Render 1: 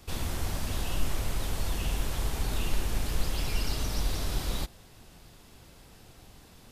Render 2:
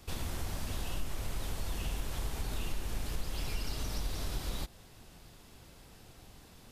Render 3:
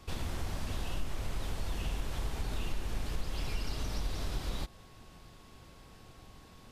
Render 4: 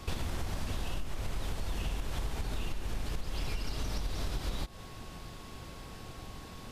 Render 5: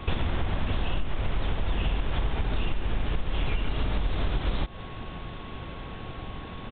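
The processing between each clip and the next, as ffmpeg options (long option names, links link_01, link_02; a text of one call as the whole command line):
ffmpeg -i in.wav -af "acompressor=threshold=-32dB:ratio=2,volume=-2dB" out.wav
ffmpeg -i in.wav -af "aeval=exprs='val(0)+0.000562*sin(2*PI*1100*n/s)':channel_layout=same,highshelf=frequency=8000:gain=-10,volume=1dB" out.wav
ffmpeg -i in.wav -af "acompressor=threshold=-39dB:ratio=6,volume=8.5dB" out.wav
ffmpeg -i in.wav -af "aresample=8000,aresample=44100,volume=8dB" out.wav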